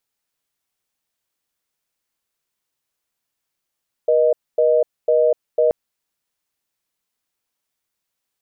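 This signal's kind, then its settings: call progress tone reorder tone, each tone -15 dBFS 1.63 s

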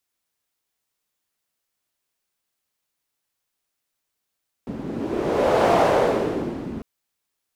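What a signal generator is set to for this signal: wind-like swept noise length 2.15 s, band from 240 Hz, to 630 Hz, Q 2.2, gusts 1, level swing 14 dB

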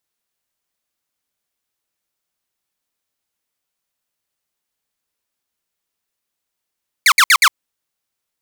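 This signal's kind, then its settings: burst of laser zaps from 2400 Hz, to 990 Hz, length 0.06 s saw, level -4.5 dB, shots 4, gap 0.06 s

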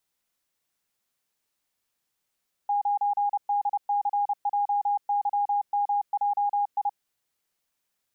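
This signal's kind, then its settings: Morse "9DCJYMJI" 30 wpm 817 Hz -21.5 dBFS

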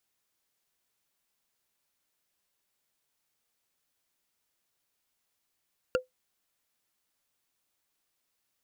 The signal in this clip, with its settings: wood hit, lowest mode 509 Hz, decay 0.14 s, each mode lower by 3.5 dB, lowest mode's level -19 dB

